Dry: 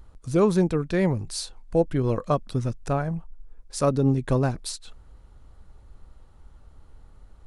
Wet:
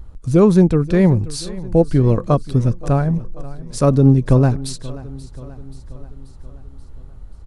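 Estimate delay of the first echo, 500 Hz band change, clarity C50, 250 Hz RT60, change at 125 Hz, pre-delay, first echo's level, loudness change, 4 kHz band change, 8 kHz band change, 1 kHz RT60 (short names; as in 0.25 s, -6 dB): 0.532 s, +7.0 dB, none, none, +11.0 dB, none, -18.5 dB, +9.0 dB, +3.0 dB, +3.0 dB, none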